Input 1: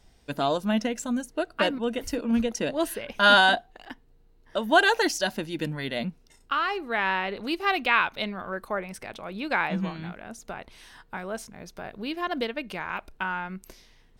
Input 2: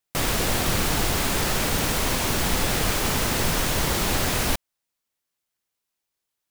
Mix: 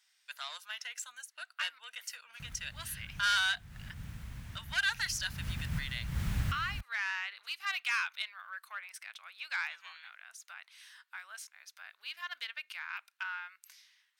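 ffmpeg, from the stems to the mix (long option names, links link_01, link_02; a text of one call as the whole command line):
ffmpeg -i stem1.wav -i stem2.wav -filter_complex "[0:a]asoftclip=type=tanh:threshold=-17.5dB,highpass=frequency=1400:width=0.5412,highpass=frequency=1400:width=1.3066,volume=-4dB,asplit=2[link_01][link_02];[1:a]firequalizer=gain_entry='entry(140,0);entry(360,-24);entry(1600,-10);entry(4500,-18)':delay=0.05:min_phase=1,adelay=2250,volume=-4.5dB,afade=type=in:start_time=4.84:duration=0.62:silence=0.266073[link_03];[link_02]apad=whole_len=390664[link_04];[link_03][link_04]sidechaincompress=threshold=-48dB:ratio=3:attack=16:release=219[link_05];[link_01][link_05]amix=inputs=2:normalize=0,highpass=51,lowshelf=frequency=96:gain=7" out.wav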